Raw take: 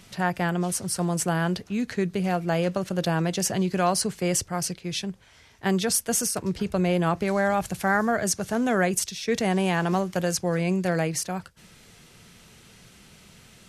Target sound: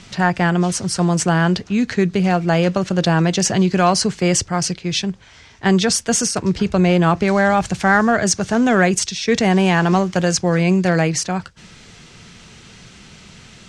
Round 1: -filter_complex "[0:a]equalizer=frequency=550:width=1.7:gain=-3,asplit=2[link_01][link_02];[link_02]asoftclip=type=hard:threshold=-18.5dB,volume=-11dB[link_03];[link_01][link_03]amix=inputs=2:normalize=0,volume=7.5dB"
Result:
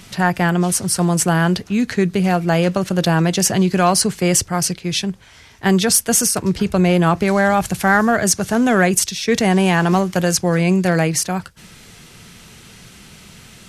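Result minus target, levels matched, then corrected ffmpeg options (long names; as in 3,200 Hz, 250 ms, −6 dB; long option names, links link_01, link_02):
8,000 Hz band +2.5 dB
-filter_complex "[0:a]lowpass=frequency=7500:width=0.5412,lowpass=frequency=7500:width=1.3066,equalizer=frequency=550:width=1.7:gain=-3,asplit=2[link_01][link_02];[link_02]asoftclip=type=hard:threshold=-18.5dB,volume=-11dB[link_03];[link_01][link_03]amix=inputs=2:normalize=0,volume=7.5dB"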